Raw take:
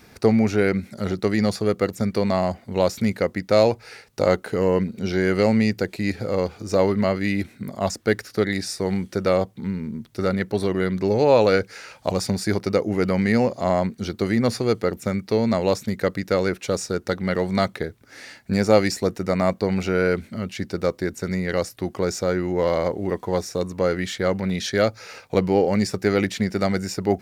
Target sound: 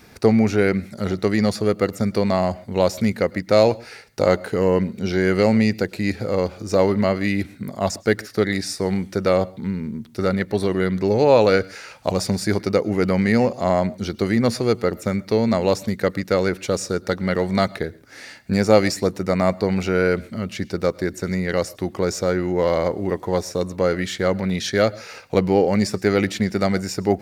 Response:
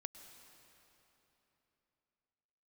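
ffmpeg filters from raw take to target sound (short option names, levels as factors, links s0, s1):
-filter_complex "[0:a]asplit=2[s0][s1];[1:a]atrim=start_sample=2205,atrim=end_sample=6174[s2];[s1][s2]afir=irnorm=-1:irlink=0,volume=1.26[s3];[s0][s3]amix=inputs=2:normalize=0,volume=0.708"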